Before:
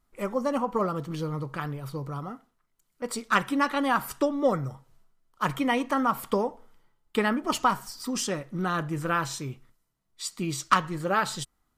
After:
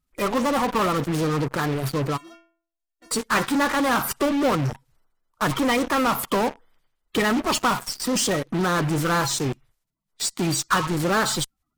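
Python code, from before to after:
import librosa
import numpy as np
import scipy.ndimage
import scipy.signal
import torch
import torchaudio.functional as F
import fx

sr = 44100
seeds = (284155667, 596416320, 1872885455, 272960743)

p1 = fx.spec_quant(x, sr, step_db=30)
p2 = fx.fuzz(p1, sr, gain_db=40.0, gate_db=-42.0)
p3 = p1 + (p2 * librosa.db_to_amplitude(-4.0))
p4 = fx.stiff_resonator(p3, sr, f0_hz=330.0, decay_s=0.49, stiffness=0.008, at=(2.16, 3.1), fade=0.02)
y = p4 * librosa.db_to_amplitude(-5.0)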